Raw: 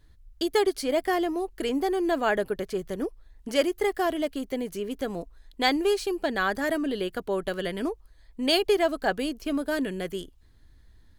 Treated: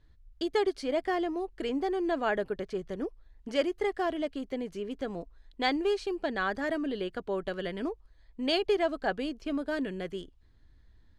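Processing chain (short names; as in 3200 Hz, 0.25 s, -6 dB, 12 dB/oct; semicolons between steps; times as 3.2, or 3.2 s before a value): air absorption 91 m; gain -4 dB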